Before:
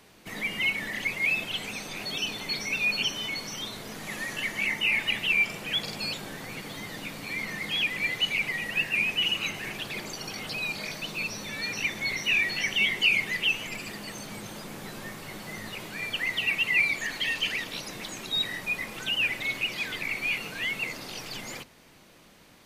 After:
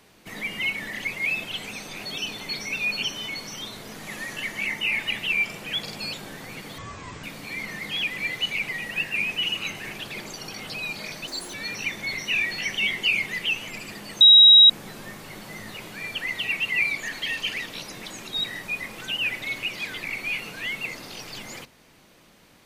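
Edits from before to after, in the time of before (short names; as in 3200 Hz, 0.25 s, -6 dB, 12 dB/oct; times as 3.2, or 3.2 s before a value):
6.78–7.03 speed 55%
11.07–11.52 speed 171%
14.19–14.68 bleep 3830 Hz -8 dBFS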